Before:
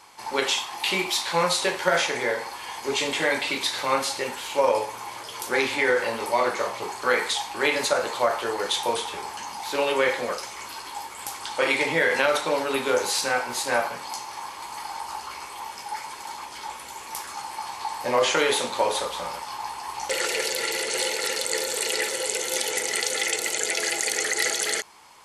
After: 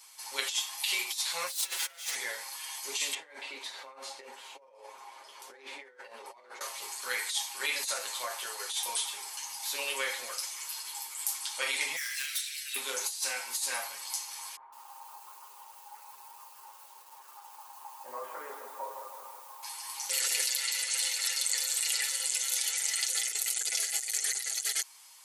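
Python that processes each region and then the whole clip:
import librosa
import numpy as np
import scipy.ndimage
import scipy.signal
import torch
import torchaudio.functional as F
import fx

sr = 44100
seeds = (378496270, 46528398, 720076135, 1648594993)

y = fx.chain(x, sr, fx.lower_of_two(delay_ms=6.0),
    fx.peak_eq(hz=150.0, db=-9.0, octaves=2.8),
    fx.over_compress(threshold_db=-32.0, ratio=-0.5), at=(1.47, 2.15))
y = fx.chain(y, sr, fx.bandpass_q(hz=480.0, q=0.95),
    fx.over_compress(threshold_db=-34.0, ratio=-1.0), at=(3.14, 6.61))
y = fx.chain(y, sr, fx.steep_highpass(hz=1600.0, slope=72),
    fx.clip_hard(threshold_db=-28.5),
    fx.notch(hz=6600.0, q=25.0), at=(11.96, 12.76))
y = fx.chain(y, sr, fx.lowpass(hz=1200.0, slope=24),
    fx.low_shelf(hz=250.0, db=-9.5),
    fx.echo_crushed(ms=160, feedback_pct=55, bits=8, wet_db=-7.0), at=(14.56, 19.63))
y = fx.chain(y, sr, fx.highpass(hz=730.0, slope=12),
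    fx.high_shelf(hz=7800.0, db=-8.0), at=(20.46, 23.09))
y = np.diff(y, prepend=0.0)
y = fx.over_compress(y, sr, threshold_db=-32.0, ratio=-0.5)
y = y + 0.7 * np.pad(y, (int(7.5 * sr / 1000.0), 0))[:len(y)]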